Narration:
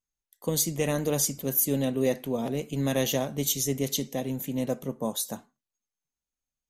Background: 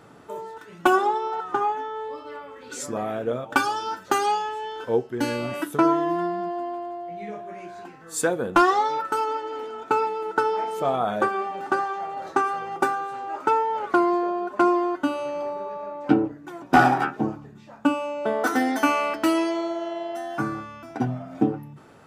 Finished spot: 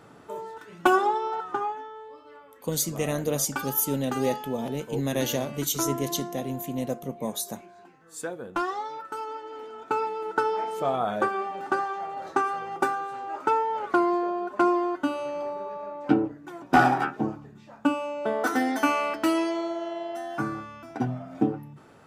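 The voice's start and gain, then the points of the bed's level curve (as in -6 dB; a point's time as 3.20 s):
2.20 s, -1.0 dB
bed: 1.34 s -1.5 dB
2.05 s -11 dB
8.98 s -11 dB
10.29 s -2.5 dB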